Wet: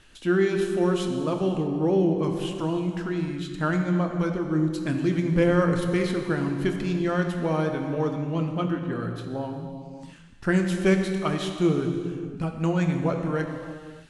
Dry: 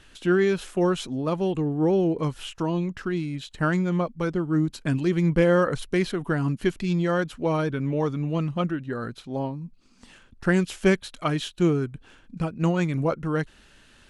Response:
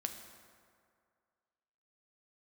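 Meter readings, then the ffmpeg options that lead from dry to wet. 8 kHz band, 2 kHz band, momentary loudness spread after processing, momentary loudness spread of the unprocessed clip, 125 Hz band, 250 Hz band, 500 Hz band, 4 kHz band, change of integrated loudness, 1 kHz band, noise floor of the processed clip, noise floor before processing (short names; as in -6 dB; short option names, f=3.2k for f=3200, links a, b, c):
-0.5 dB, -1.0 dB, 10 LU, 9 LU, -0.5 dB, +0.5 dB, -0.5 dB, -1.0 dB, 0.0 dB, -1.0 dB, -44 dBFS, -55 dBFS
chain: -filter_complex "[1:a]atrim=start_sample=2205,afade=t=out:st=0.38:d=0.01,atrim=end_sample=17199,asetrate=22932,aresample=44100[a];[0:a][a]afir=irnorm=-1:irlink=0,volume=-4dB"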